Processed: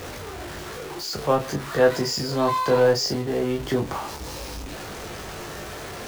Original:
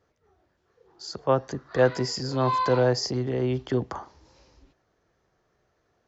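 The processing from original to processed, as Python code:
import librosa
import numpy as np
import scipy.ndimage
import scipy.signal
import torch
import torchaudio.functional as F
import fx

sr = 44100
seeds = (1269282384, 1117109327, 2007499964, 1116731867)

y = x + 0.5 * 10.0 ** (-31.0 / 20.0) * np.sign(x)
y = fx.room_early_taps(y, sr, ms=(20, 34), db=(-5.5, -7.5))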